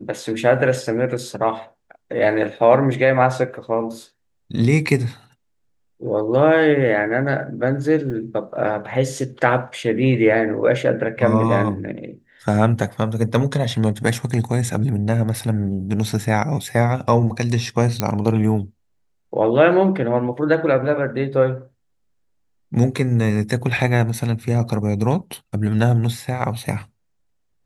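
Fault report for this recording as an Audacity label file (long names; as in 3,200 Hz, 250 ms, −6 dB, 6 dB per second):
8.100000	8.100000	drop-out 3.4 ms
18.000000	18.000000	click −4 dBFS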